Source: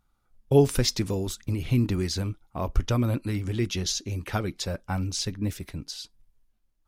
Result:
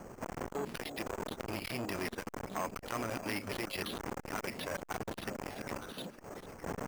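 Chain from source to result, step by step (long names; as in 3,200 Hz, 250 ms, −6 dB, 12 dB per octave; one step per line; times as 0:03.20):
wind on the microphone 190 Hz −24 dBFS
low-pass filter 6,900 Hz 12 dB per octave
tilt shelving filter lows −7.5 dB, about 670 Hz
mains-hum notches 50/100/150 Hz
downward compressor 8 to 1, threshold −28 dBFS, peak gain reduction 14.5 dB
bass and treble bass −11 dB, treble −14 dB
output level in coarse steps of 14 dB
echo through a band-pass that steps 304 ms, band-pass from 210 Hz, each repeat 1.4 octaves, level −5 dB
bad sample-rate conversion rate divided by 6×, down filtered, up hold
saturating transformer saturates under 1,500 Hz
level +9 dB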